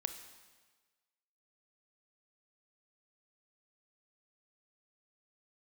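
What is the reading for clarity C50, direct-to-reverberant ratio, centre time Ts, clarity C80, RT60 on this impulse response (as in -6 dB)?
9.5 dB, 8.0 dB, 18 ms, 11.0 dB, 1.4 s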